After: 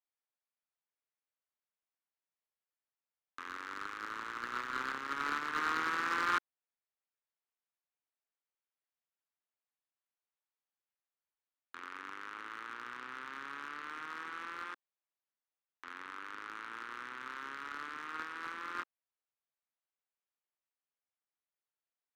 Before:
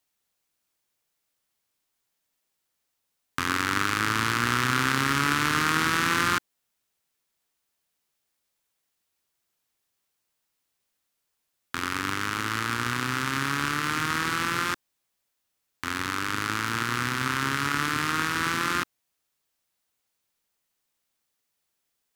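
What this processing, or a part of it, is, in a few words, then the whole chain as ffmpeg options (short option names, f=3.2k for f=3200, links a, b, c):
walkie-talkie: -af "highpass=460,lowpass=2.3k,asoftclip=type=hard:threshold=-20.5dB,agate=range=-17dB:threshold=-25dB:ratio=16:detection=peak,volume=3dB"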